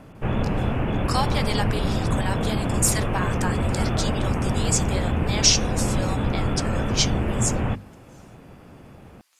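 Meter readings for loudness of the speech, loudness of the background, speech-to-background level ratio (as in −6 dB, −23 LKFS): −26.5 LKFS, −25.0 LKFS, −1.5 dB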